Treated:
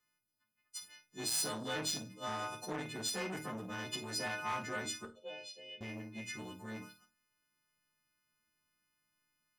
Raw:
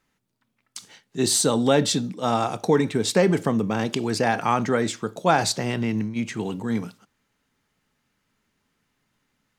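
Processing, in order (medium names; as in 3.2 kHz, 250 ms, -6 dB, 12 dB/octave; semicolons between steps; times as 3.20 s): partials quantised in pitch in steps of 3 st; 5.05–5.81 s: two resonant band-passes 1.2 kHz, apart 2.5 oct; chord resonator D#2 major, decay 0.21 s; hard clipper -22.5 dBFS, distortion -13 dB; flutter echo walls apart 8.9 m, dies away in 0.26 s; transformer saturation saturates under 890 Hz; trim -6 dB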